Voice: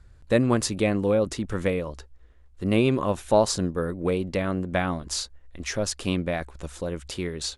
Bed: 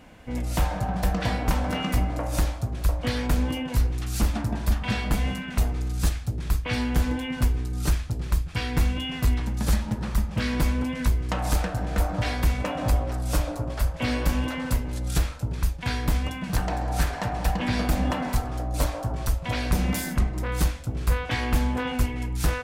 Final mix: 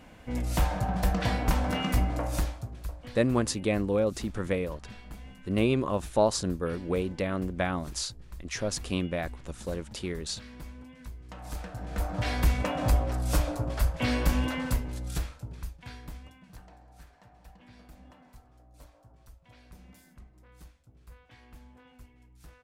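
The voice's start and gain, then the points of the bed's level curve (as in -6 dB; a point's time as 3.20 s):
2.85 s, -4.0 dB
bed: 2.24 s -2 dB
3.22 s -20.5 dB
11.13 s -20.5 dB
12.38 s -1.5 dB
14.57 s -1.5 dB
16.95 s -28.5 dB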